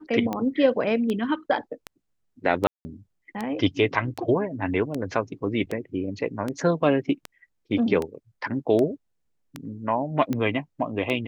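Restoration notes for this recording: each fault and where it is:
scratch tick 78 rpm −15 dBFS
0:02.67–0:02.85: drop-out 180 ms

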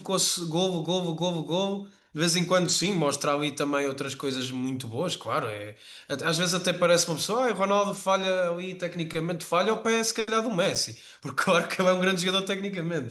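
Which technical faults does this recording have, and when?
0:10.75–0:10.76: drop-out 6.9 ms

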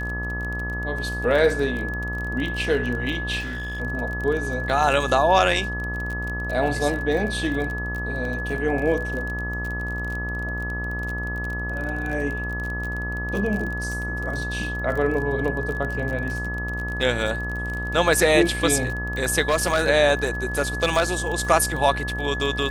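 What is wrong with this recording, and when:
mains buzz 60 Hz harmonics 22 −30 dBFS
surface crackle 30 per second −28 dBFS
whistle 1,700 Hz −29 dBFS
0:03.39–0:03.81: clipping −27 dBFS
0:19.49–0:19.89: clipping −15 dBFS
0:20.58–0:21.03: clipping −13 dBFS

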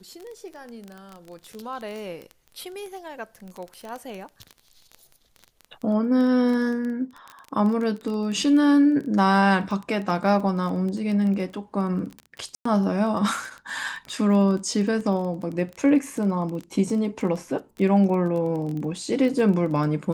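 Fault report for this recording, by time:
surface crackle 17 per second −29 dBFS
0:12.55–0:12.65: drop-out 104 ms

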